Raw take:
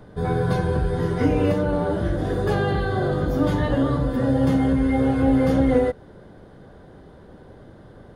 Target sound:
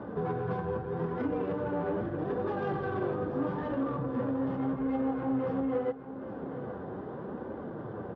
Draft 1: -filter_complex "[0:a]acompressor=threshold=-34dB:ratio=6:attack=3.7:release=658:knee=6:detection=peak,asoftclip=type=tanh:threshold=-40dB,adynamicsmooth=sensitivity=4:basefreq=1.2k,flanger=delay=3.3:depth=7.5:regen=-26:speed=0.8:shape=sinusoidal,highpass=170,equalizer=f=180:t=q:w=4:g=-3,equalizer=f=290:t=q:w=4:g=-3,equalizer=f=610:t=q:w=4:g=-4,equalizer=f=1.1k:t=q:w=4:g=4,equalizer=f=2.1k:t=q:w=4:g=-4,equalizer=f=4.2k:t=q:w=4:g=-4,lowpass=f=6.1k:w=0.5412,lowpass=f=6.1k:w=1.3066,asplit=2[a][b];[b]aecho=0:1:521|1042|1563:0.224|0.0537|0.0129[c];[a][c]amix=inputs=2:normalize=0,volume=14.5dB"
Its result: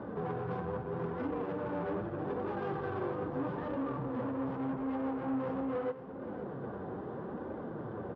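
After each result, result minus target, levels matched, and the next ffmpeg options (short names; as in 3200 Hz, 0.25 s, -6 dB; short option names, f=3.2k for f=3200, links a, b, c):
echo 0.297 s early; soft clip: distortion +9 dB
-filter_complex "[0:a]acompressor=threshold=-34dB:ratio=6:attack=3.7:release=658:knee=6:detection=peak,asoftclip=type=tanh:threshold=-40dB,adynamicsmooth=sensitivity=4:basefreq=1.2k,flanger=delay=3.3:depth=7.5:regen=-26:speed=0.8:shape=sinusoidal,highpass=170,equalizer=f=180:t=q:w=4:g=-3,equalizer=f=290:t=q:w=4:g=-3,equalizer=f=610:t=q:w=4:g=-4,equalizer=f=1.1k:t=q:w=4:g=4,equalizer=f=2.1k:t=q:w=4:g=-4,equalizer=f=4.2k:t=q:w=4:g=-4,lowpass=f=6.1k:w=0.5412,lowpass=f=6.1k:w=1.3066,asplit=2[a][b];[b]aecho=0:1:818|1636|2454:0.224|0.0537|0.0129[c];[a][c]amix=inputs=2:normalize=0,volume=14.5dB"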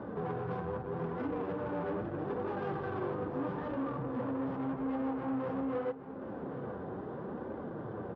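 soft clip: distortion +9 dB
-filter_complex "[0:a]acompressor=threshold=-34dB:ratio=6:attack=3.7:release=658:knee=6:detection=peak,asoftclip=type=tanh:threshold=-31.5dB,adynamicsmooth=sensitivity=4:basefreq=1.2k,flanger=delay=3.3:depth=7.5:regen=-26:speed=0.8:shape=sinusoidal,highpass=170,equalizer=f=180:t=q:w=4:g=-3,equalizer=f=290:t=q:w=4:g=-3,equalizer=f=610:t=q:w=4:g=-4,equalizer=f=1.1k:t=q:w=4:g=4,equalizer=f=2.1k:t=q:w=4:g=-4,equalizer=f=4.2k:t=q:w=4:g=-4,lowpass=f=6.1k:w=0.5412,lowpass=f=6.1k:w=1.3066,asplit=2[a][b];[b]aecho=0:1:818|1636|2454:0.224|0.0537|0.0129[c];[a][c]amix=inputs=2:normalize=0,volume=14.5dB"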